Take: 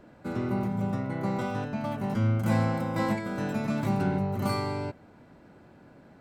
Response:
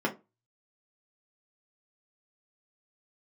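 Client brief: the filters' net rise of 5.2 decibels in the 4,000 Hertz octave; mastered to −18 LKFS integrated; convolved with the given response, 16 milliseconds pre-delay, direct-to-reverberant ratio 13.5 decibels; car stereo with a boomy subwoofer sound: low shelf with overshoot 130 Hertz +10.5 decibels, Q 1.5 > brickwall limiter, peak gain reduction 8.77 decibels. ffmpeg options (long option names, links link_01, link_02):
-filter_complex "[0:a]equalizer=frequency=4000:width_type=o:gain=6,asplit=2[link_01][link_02];[1:a]atrim=start_sample=2205,adelay=16[link_03];[link_02][link_03]afir=irnorm=-1:irlink=0,volume=-23dB[link_04];[link_01][link_04]amix=inputs=2:normalize=0,lowshelf=frequency=130:width_type=q:width=1.5:gain=10.5,volume=10dB,alimiter=limit=-9dB:level=0:latency=1"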